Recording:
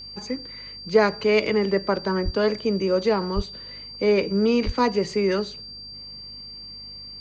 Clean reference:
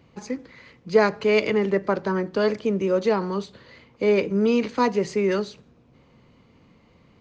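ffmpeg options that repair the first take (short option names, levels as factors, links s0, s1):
-filter_complex "[0:a]bandreject=f=50.6:t=h:w=4,bandreject=f=101.2:t=h:w=4,bandreject=f=151.8:t=h:w=4,bandreject=f=202.4:t=h:w=4,bandreject=f=253:t=h:w=4,bandreject=f=4700:w=30,asplit=3[s0][s1][s2];[s0]afade=t=out:st=2.24:d=0.02[s3];[s1]highpass=f=140:w=0.5412,highpass=f=140:w=1.3066,afade=t=in:st=2.24:d=0.02,afade=t=out:st=2.36:d=0.02[s4];[s2]afade=t=in:st=2.36:d=0.02[s5];[s3][s4][s5]amix=inputs=3:normalize=0,asplit=3[s6][s7][s8];[s6]afade=t=out:st=3.35:d=0.02[s9];[s7]highpass=f=140:w=0.5412,highpass=f=140:w=1.3066,afade=t=in:st=3.35:d=0.02,afade=t=out:st=3.47:d=0.02[s10];[s8]afade=t=in:st=3.47:d=0.02[s11];[s9][s10][s11]amix=inputs=3:normalize=0,asplit=3[s12][s13][s14];[s12]afade=t=out:st=4.65:d=0.02[s15];[s13]highpass=f=140:w=0.5412,highpass=f=140:w=1.3066,afade=t=in:st=4.65:d=0.02,afade=t=out:st=4.77:d=0.02[s16];[s14]afade=t=in:st=4.77:d=0.02[s17];[s15][s16][s17]amix=inputs=3:normalize=0"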